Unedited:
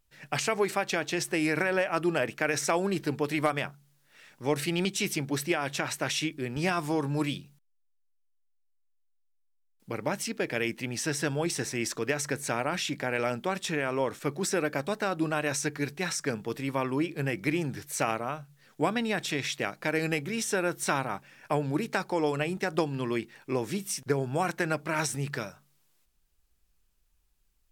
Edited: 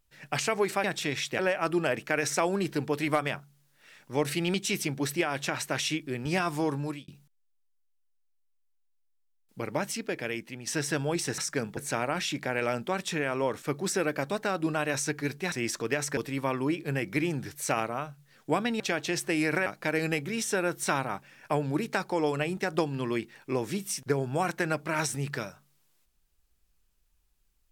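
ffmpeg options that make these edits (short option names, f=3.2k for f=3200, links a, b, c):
-filter_complex "[0:a]asplit=11[a][b][c][d][e][f][g][h][i][j][k];[a]atrim=end=0.842[l];[b]atrim=start=19.108:end=19.662[m];[c]atrim=start=1.698:end=7.39,asetpts=PTS-STARTPTS,afade=t=out:st=5.332:d=0.36[n];[d]atrim=start=7.39:end=10.98,asetpts=PTS-STARTPTS,afade=t=in:d=0.004:c=hsin,afade=t=out:st=2.76:d=0.83:silence=0.354813[o];[e]atrim=start=10.98:end=11.692,asetpts=PTS-STARTPTS,afade=t=in:d=0.004:c=hsin:silence=0.354813[p];[f]atrim=start=16.088:end=16.482[q];[g]atrim=start=12.338:end=16.092[r];[h]atrim=start=11.688:end=12.342[s];[i]atrim=start=16.478:end=19.112[t];[j]atrim=start=0.838:end=1.702[u];[k]atrim=start=19.658[v];[l][m]acrossfade=d=0.004:c1=hsin:c2=hsin[w];[n][o][p]concat=n=3:v=0:a=1[x];[w][x]acrossfade=d=0.004:c1=hsin:c2=hsin[y];[y][q]acrossfade=d=0.004:c1=hsin:c2=hsin[z];[z][r]acrossfade=d=0.004:c1=hsin:c2=hsin[aa];[aa][s]acrossfade=d=0.004:c1=hsin:c2=hsin[ab];[ab][t]acrossfade=d=0.004:c1=hsin:c2=hsin[ac];[ac][u]acrossfade=d=0.004:c1=hsin:c2=hsin[ad];[ad][v]acrossfade=d=0.004:c1=hsin:c2=hsin"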